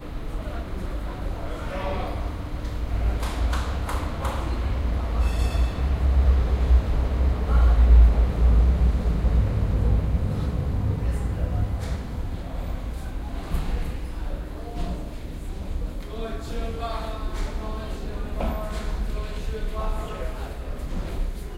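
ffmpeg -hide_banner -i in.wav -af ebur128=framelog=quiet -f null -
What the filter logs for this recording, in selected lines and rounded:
Integrated loudness:
  I:         -26.6 LUFS
  Threshold: -36.6 LUFS
Loudness range:
  LRA:        12.0 LU
  Threshold: -46.2 LUFS
  LRA low:   -33.1 LUFS
  LRA high:  -21.1 LUFS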